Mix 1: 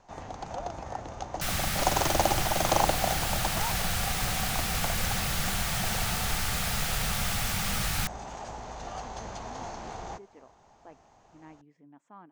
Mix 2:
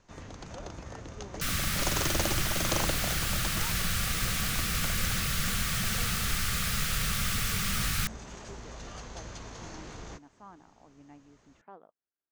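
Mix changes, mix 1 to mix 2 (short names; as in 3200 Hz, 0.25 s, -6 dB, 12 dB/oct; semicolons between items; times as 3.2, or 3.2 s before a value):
speech: entry -1.70 s; first sound: add bell 780 Hz -15 dB 0.73 oct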